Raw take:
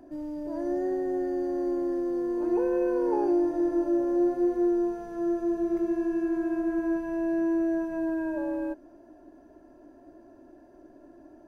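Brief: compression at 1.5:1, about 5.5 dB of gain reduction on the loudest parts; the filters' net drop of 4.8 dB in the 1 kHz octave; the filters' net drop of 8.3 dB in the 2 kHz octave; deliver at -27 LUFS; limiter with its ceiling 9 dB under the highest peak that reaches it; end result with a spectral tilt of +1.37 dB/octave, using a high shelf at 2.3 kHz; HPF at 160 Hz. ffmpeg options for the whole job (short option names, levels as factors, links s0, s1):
-af "highpass=160,equalizer=f=1000:t=o:g=-5.5,equalizer=f=2000:t=o:g=-6,highshelf=f=2300:g=-6,acompressor=threshold=0.0126:ratio=1.5,volume=3.55,alimiter=limit=0.0891:level=0:latency=1"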